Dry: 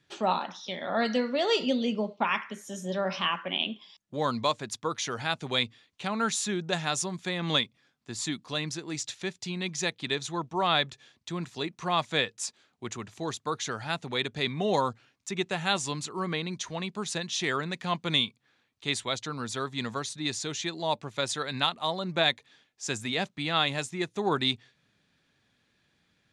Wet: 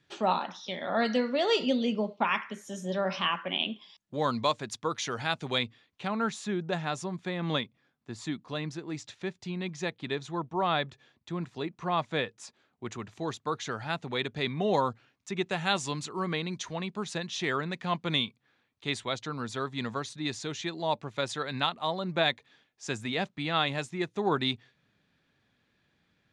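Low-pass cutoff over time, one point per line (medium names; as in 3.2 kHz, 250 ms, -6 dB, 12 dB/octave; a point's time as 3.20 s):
low-pass 6 dB/octave
6.3 kHz
from 5.58 s 2.5 kHz
from 6.15 s 1.5 kHz
from 12.86 s 3 kHz
from 15.46 s 5.5 kHz
from 16.73 s 3 kHz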